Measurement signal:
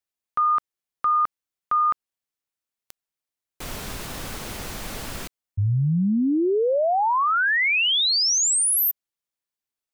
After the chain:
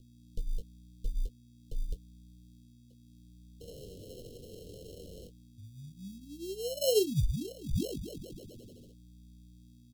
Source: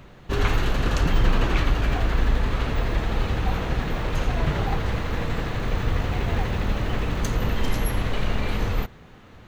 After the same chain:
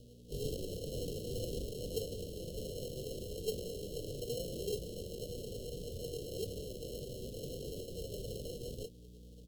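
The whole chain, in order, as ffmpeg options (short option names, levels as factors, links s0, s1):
-filter_complex "[0:a]asplit=3[s0][s1][s2];[s0]bandpass=f=730:t=q:w=8,volume=1[s3];[s1]bandpass=f=1090:t=q:w=8,volume=0.501[s4];[s2]bandpass=f=2440:t=q:w=8,volume=0.355[s5];[s3][s4][s5]amix=inputs=3:normalize=0,equalizer=f=270:t=o:w=0.21:g=-12,aeval=exprs='val(0)+0.00224*(sin(2*PI*60*n/s)+sin(2*PI*2*60*n/s)/2+sin(2*PI*3*60*n/s)/3+sin(2*PI*4*60*n/s)/4+sin(2*PI*5*60*n/s)/5)':c=same,flanger=delay=8.5:depth=2.5:regen=-21:speed=0.7:shape=sinusoidal,acrusher=samples=37:mix=1:aa=0.000001,asuperstop=centerf=1300:order=12:qfactor=0.51,asplit=2[s6][s7];[s7]adelay=21,volume=0.335[s8];[s6][s8]amix=inputs=2:normalize=0,volume=1.78" -ar 44100 -c:a libmp3lame -b:a 96k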